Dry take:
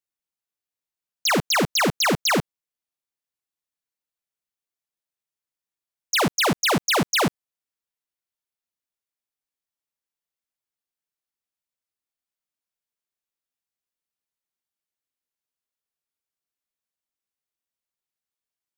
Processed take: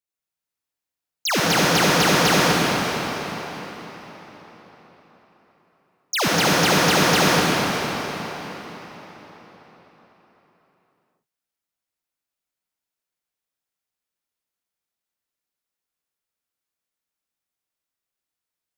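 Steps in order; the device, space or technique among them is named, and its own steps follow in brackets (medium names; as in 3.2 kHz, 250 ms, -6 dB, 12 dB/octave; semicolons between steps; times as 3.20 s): cathedral (reverberation RT60 4.6 s, pre-delay 53 ms, DRR -6.5 dB); trim -2.5 dB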